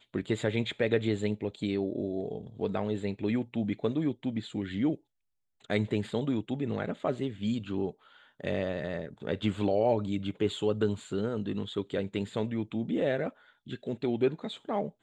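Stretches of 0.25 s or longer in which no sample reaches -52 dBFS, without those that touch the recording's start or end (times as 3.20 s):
4.97–5.61 s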